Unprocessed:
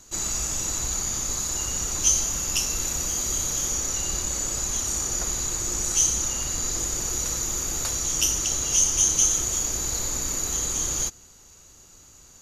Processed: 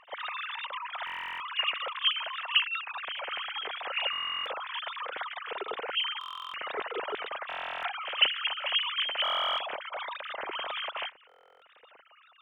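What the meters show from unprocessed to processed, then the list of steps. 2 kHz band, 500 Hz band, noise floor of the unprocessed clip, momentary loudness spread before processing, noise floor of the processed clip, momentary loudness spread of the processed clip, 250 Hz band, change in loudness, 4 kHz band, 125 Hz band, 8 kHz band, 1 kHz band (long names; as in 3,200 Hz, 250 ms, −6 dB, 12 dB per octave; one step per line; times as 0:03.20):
+7.0 dB, −0.5 dB, −51 dBFS, 6 LU, −60 dBFS, 10 LU, −17.0 dB, −8.0 dB, +3.0 dB, below −35 dB, below −40 dB, +5.5 dB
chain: three sine waves on the formant tracks
echo ahead of the sound 40 ms −17 dB
buffer that repeats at 0:01.05/0:04.11/0:06.19/0:07.48/0:09.23/0:11.27, samples 1,024, times 14
level −8 dB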